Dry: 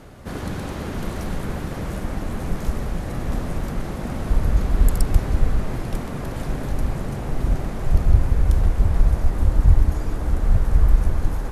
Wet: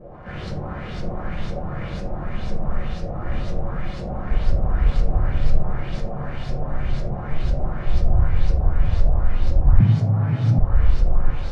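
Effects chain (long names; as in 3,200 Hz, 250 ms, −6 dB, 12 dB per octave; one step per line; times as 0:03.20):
linear delta modulator 64 kbit/s, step −32.5 dBFS
auto-filter low-pass saw up 2 Hz 450–5,400 Hz
convolution reverb RT60 0.40 s, pre-delay 6 ms, DRR −3.5 dB
0:09.80–0:10.59: frequency shifter +91 Hz
level −10.5 dB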